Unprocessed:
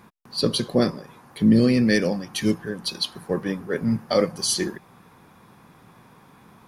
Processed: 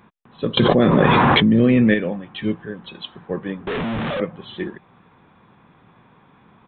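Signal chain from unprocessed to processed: 3.67–4.2 infinite clipping; downsampling 8000 Hz; 0.57–1.94 fast leveller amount 100%; gain -1 dB

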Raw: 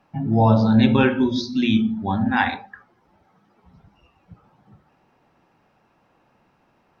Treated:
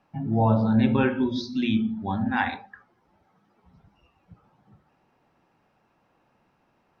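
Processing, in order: treble ducked by the level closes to 2600 Hz, closed at -13 dBFS; gain -5 dB

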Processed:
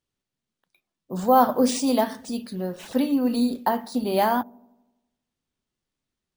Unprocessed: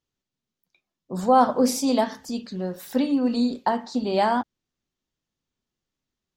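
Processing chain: on a send: dark delay 83 ms, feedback 59%, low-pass 470 Hz, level -21 dB; on the sum: careless resampling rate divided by 3×, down none, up hold

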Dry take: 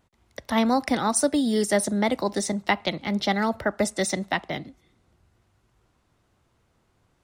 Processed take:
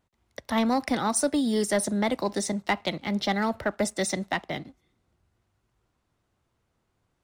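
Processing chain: sample leveller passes 1; gain -5.5 dB

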